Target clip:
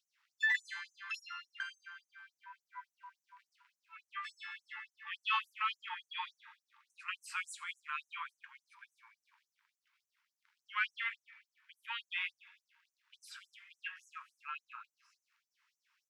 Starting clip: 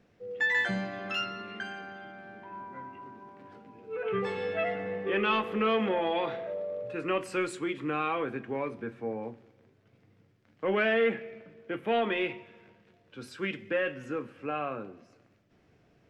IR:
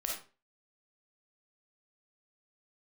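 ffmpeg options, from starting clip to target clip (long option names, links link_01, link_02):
-af "aecho=1:1:87|174|261:0.0891|0.0392|0.0173,afftfilt=real='re*gte(b*sr/1024,830*pow(5900/830,0.5+0.5*sin(2*PI*3.5*pts/sr)))':imag='im*gte(b*sr/1024,830*pow(5900/830,0.5+0.5*sin(2*PI*3.5*pts/sr)))':win_size=1024:overlap=0.75,volume=-2.5dB"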